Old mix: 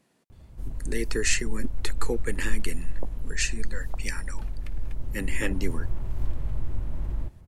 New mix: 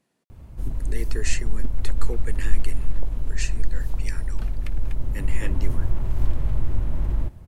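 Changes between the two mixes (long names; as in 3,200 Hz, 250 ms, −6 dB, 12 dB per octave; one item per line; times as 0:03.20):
speech −5.5 dB
background +6.5 dB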